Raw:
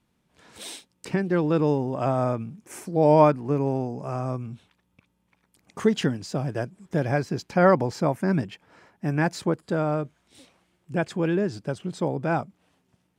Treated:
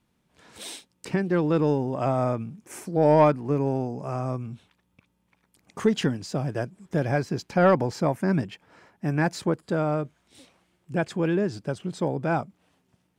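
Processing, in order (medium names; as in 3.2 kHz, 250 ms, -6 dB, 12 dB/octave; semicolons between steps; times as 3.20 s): saturation -7.5 dBFS, distortion -22 dB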